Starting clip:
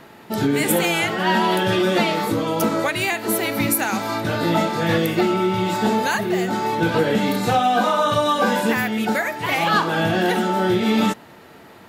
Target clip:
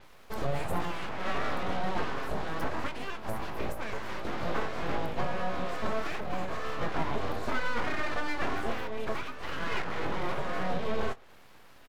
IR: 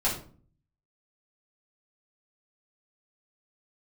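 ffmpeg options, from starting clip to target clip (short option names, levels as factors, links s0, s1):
-filter_complex "[0:a]acrossover=split=1400[s0][s1];[s1]acompressor=threshold=0.0126:ratio=6[s2];[s0][s2]amix=inputs=2:normalize=0,aeval=exprs='abs(val(0))':c=same,asplit=2[s3][s4];[s4]adelay=23,volume=0.237[s5];[s3][s5]amix=inputs=2:normalize=0,adynamicequalizer=threshold=0.00316:dfrequency=7700:dqfactor=0.7:tfrequency=7700:tqfactor=0.7:attack=5:release=100:ratio=0.375:range=3:mode=cutabove:tftype=highshelf,volume=0.355"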